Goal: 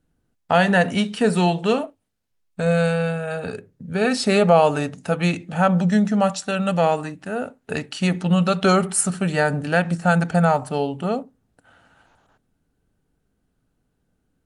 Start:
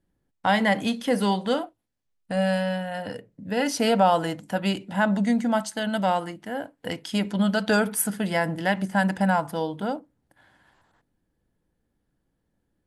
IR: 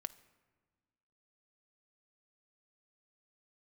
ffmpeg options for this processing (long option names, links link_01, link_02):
-af "asetrate=39249,aresample=44100,volume=4.5dB"